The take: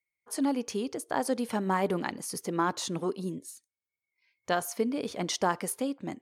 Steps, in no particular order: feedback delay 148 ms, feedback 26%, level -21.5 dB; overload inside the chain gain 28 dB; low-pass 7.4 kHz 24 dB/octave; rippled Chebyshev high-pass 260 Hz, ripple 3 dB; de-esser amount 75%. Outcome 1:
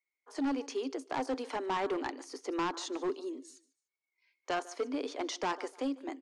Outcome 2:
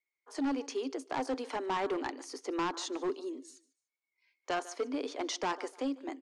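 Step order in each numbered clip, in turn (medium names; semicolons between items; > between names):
feedback delay > de-esser > rippled Chebyshev high-pass > overload inside the chain > low-pass; rippled Chebyshev high-pass > de-esser > feedback delay > overload inside the chain > low-pass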